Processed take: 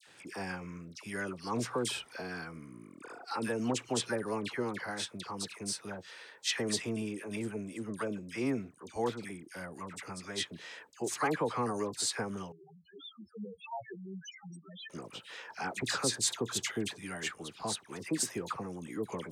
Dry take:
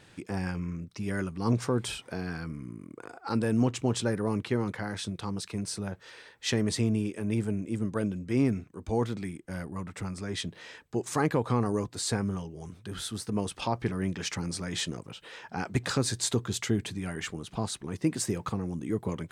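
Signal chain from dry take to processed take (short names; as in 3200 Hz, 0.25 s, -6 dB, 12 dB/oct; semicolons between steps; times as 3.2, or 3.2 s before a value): HPF 550 Hz 6 dB/oct; dispersion lows, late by 74 ms, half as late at 1500 Hz; 12.52–14.9 loudest bins only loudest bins 2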